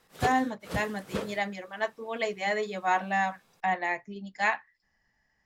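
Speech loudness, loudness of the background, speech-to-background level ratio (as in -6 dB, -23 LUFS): -30.5 LUFS, -37.5 LUFS, 7.0 dB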